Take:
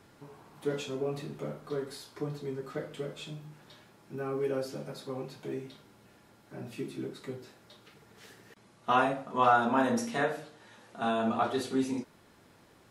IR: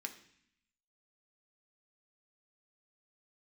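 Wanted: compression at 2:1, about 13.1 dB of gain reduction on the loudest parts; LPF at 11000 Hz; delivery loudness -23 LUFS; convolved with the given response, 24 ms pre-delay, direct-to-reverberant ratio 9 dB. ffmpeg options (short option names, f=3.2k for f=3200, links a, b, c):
-filter_complex "[0:a]lowpass=11k,acompressor=threshold=-44dB:ratio=2,asplit=2[a][b];[1:a]atrim=start_sample=2205,adelay=24[c];[b][c]afir=irnorm=-1:irlink=0,volume=-7.5dB[d];[a][d]amix=inputs=2:normalize=0,volume=19.5dB"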